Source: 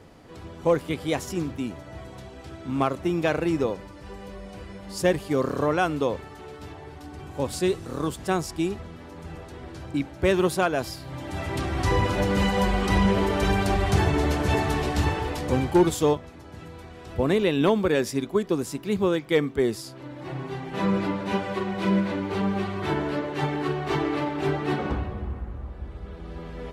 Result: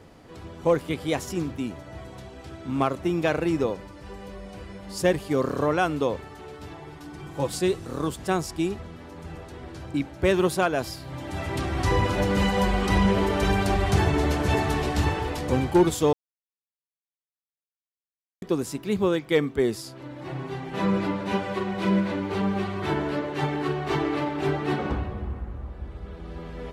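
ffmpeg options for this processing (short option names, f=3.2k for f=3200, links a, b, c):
-filter_complex "[0:a]asettb=1/sr,asplit=3[a][b][c];[a]atrim=end=6.714[d];[b]atrim=start=6.71:end=7.58,asetpts=PTS-STARTPTS,afade=t=in:d=0.004:c=qsin,afade=t=out:st=0.866:d=0.004:c=qsin,aecho=1:1:6:0.6,atrim=end_sample=38367[e];[c]atrim=start=7.576[f];[d][e]acrossfade=d=0.004:c1=hsin:c2=qsin[g];[g][f]acrossfade=d=0.004:c1=qsin:c2=hsin,asplit=3[h][i][j];[h]atrim=end=16.13,asetpts=PTS-STARTPTS,afade=t=out:st=16.126:d=0.004:c=hsin[k];[i]atrim=start=16.13:end=18.42,asetpts=PTS-STARTPTS,volume=0[l];[j]atrim=start=18.42,asetpts=PTS-STARTPTS,afade=t=in:d=0.004:c=hsin[m];[k][l][m]concat=n=3:v=0:a=1"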